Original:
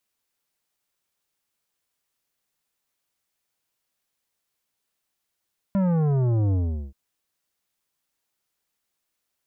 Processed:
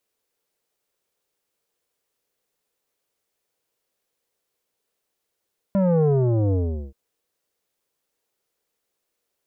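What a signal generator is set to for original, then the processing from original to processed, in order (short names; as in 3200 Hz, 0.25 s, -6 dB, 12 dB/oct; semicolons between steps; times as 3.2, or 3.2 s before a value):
sub drop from 200 Hz, over 1.18 s, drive 11.5 dB, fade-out 0.41 s, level -20 dB
bell 460 Hz +11.5 dB 0.89 oct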